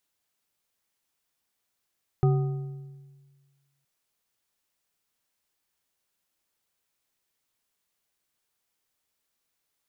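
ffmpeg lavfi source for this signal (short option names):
-f lavfi -i "aevalsrc='0.141*pow(10,-3*t/1.6)*sin(2*PI*139*t)+0.0631*pow(10,-3*t/1.18)*sin(2*PI*383.2*t)+0.0282*pow(10,-3*t/0.965)*sin(2*PI*751.2*t)+0.0126*pow(10,-3*t/0.83)*sin(2*PI*1241.7*t)':d=1.62:s=44100"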